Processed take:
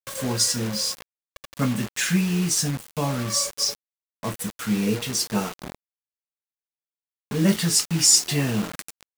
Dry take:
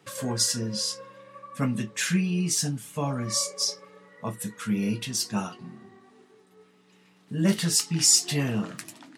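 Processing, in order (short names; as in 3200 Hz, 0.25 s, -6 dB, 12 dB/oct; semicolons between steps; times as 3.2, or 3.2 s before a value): 4.87–7.44 bell 450 Hz +11 dB 0.38 oct; bit-crush 6-bit; gain +3 dB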